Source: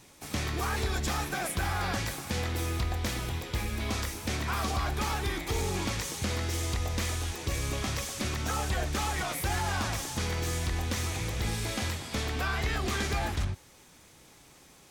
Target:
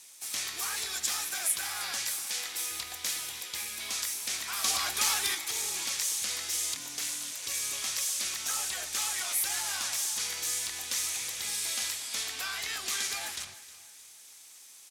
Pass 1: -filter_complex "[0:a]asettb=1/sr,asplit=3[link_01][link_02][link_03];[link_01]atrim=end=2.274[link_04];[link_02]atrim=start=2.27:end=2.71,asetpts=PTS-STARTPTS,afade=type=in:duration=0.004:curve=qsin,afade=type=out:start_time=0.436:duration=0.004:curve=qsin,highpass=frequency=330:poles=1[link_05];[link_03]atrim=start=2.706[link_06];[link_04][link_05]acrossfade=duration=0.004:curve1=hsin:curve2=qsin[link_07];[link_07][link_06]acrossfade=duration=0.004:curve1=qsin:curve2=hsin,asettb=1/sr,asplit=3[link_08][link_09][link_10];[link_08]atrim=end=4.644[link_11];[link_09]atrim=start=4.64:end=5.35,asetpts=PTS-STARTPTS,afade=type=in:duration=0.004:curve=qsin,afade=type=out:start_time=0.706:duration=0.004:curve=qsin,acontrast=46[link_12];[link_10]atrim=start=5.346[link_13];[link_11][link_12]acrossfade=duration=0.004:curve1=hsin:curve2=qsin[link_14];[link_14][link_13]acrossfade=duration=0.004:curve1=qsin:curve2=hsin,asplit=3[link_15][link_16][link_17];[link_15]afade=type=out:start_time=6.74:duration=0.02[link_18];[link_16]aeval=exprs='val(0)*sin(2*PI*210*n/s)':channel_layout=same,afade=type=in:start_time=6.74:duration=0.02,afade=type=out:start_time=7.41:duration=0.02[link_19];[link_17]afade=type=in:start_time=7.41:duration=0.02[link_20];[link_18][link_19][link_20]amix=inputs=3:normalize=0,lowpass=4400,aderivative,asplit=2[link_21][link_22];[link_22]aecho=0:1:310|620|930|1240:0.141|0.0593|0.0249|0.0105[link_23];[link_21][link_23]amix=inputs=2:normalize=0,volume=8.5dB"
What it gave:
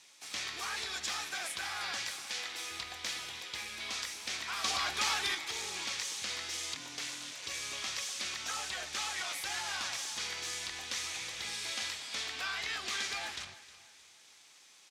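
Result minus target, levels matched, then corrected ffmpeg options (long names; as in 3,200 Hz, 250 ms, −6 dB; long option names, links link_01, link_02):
8,000 Hz band −4.5 dB
-filter_complex "[0:a]asettb=1/sr,asplit=3[link_01][link_02][link_03];[link_01]atrim=end=2.274[link_04];[link_02]atrim=start=2.27:end=2.71,asetpts=PTS-STARTPTS,afade=type=in:duration=0.004:curve=qsin,afade=type=out:start_time=0.436:duration=0.004:curve=qsin,highpass=frequency=330:poles=1[link_05];[link_03]atrim=start=2.706[link_06];[link_04][link_05]acrossfade=duration=0.004:curve1=hsin:curve2=qsin[link_07];[link_07][link_06]acrossfade=duration=0.004:curve1=qsin:curve2=hsin,asettb=1/sr,asplit=3[link_08][link_09][link_10];[link_08]atrim=end=4.644[link_11];[link_09]atrim=start=4.64:end=5.35,asetpts=PTS-STARTPTS,afade=type=in:duration=0.004:curve=qsin,afade=type=out:start_time=0.706:duration=0.004:curve=qsin,acontrast=46[link_12];[link_10]atrim=start=5.346[link_13];[link_11][link_12]acrossfade=duration=0.004:curve1=hsin:curve2=qsin[link_14];[link_14][link_13]acrossfade=duration=0.004:curve1=qsin:curve2=hsin,asplit=3[link_15][link_16][link_17];[link_15]afade=type=out:start_time=6.74:duration=0.02[link_18];[link_16]aeval=exprs='val(0)*sin(2*PI*210*n/s)':channel_layout=same,afade=type=in:start_time=6.74:duration=0.02,afade=type=out:start_time=7.41:duration=0.02[link_19];[link_17]afade=type=in:start_time=7.41:duration=0.02[link_20];[link_18][link_19][link_20]amix=inputs=3:normalize=0,lowpass=12000,aderivative,asplit=2[link_21][link_22];[link_22]aecho=0:1:310|620|930|1240:0.141|0.0593|0.0249|0.0105[link_23];[link_21][link_23]amix=inputs=2:normalize=0,volume=8.5dB"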